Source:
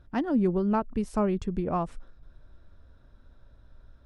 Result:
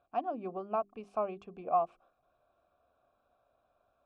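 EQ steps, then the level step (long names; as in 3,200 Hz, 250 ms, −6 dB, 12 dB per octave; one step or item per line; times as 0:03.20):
formant filter a
mains-hum notches 50/100/150/200/250/300/350/400 Hz
+5.5 dB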